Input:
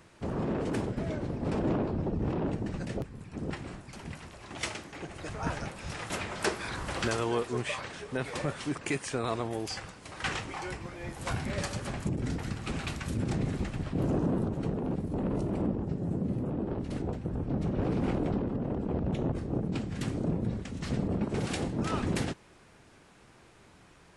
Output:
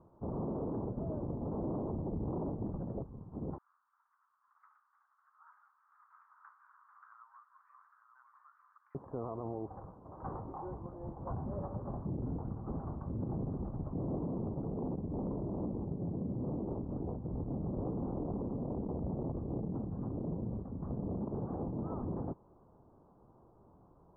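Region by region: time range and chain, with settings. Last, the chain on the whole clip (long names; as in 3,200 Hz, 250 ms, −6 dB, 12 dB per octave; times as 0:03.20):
0:03.58–0:08.95: Butterworth high-pass 1,300 Hz 48 dB per octave + upward compression, threshold −50 dBFS + single-tap delay 898 ms −8.5 dB
whole clip: Butterworth low-pass 1,100 Hz 48 dB per octave; brickwall limiter −26 dBFS; level −3.5 dB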